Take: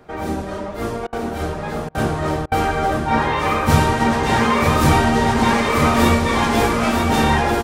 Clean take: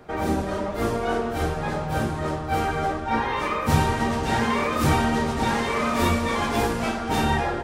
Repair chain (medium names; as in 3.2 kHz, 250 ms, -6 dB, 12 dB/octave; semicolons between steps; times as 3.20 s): interpolate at 1.07/1.89/2.46 s, 56 ms; inverse comb 940 ms -5 dB; trim 0 dB, from 1.98 s -5.5 dB